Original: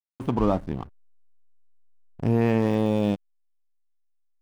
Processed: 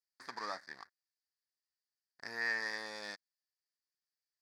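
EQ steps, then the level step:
pair of resonant band-passes 2,900 Hz, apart 1.4 octaves
spectral tilt +3 dB per octave
+5.0 dB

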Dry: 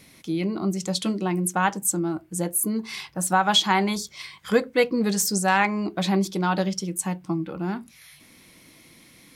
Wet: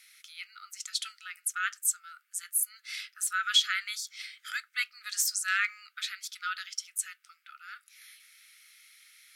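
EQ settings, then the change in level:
linear-phase brick-wall high-pass 1,200 Hz
−3.5 dB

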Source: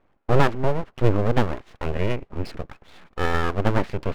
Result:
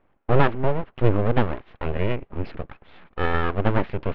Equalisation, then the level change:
low-pass filter 3,400 Hz 24 dB per octave
0.0 dB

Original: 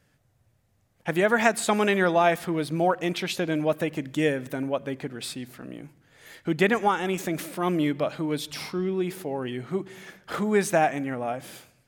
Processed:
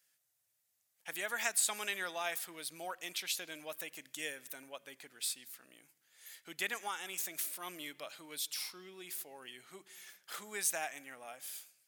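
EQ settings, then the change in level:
first difference
0.0 dB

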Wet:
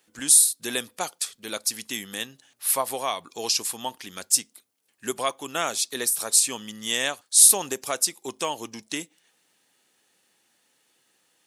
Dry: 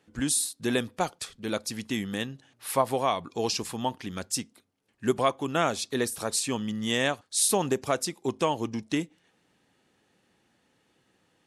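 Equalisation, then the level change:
RIAA equalisation recording
−1.5 dB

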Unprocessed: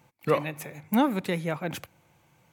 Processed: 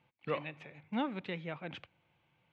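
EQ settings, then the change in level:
transistor ladder low-pass 3,700 Hz, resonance 45%
−3.0 dB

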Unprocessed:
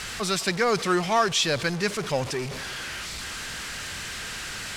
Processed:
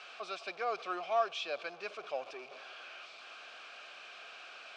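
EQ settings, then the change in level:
formant filter a
high-frequency loss of the air 56 metres
loudspeaker in its box 440–9,200 Hz, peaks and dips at 500 Hz −3 dB, 750 Hz −10 dB, 1,100 Hz −9 dB, 2,600 Hz −5 dB, 7,400 Hz −4 dB
+5.5 dB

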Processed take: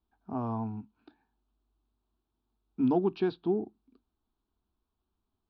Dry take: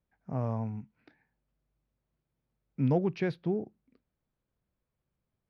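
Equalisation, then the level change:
low-pass with resonance 4,000 Hz, resonance Q 2.4
high-frequency loss of the air 210 metres
phaser with its sweep stopped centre 540 Hz, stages 6
+5.5 dB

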